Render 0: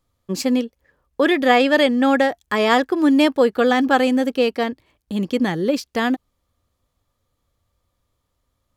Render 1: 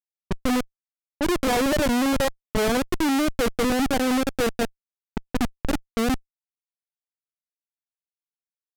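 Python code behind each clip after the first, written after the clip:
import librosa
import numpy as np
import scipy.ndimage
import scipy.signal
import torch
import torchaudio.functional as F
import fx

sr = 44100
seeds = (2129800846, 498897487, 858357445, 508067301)

y = fx.hpss(x, sr, part='percussive', gain_db=-15)
y = fx.schmitt(y, sr, flips_db=-17.5)
y = fx.env_lowpass(y, sr, base_hz=660.0, full_db=-22.5)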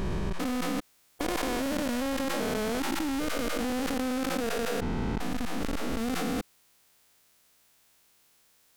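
y = fx.spec_steps(x, sr, hold_ms=400)
y = fx.env_flatten(y, sr, amount_pct=100)
y = y * 10.0 ** (-6.5 / 20.0)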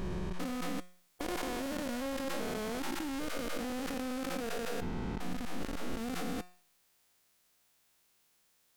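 y = fx.comb_fb(x, sr, f0_hz=180.0, decay_s=0.49, harmonics='all', damping=0.0, mix_pct=60)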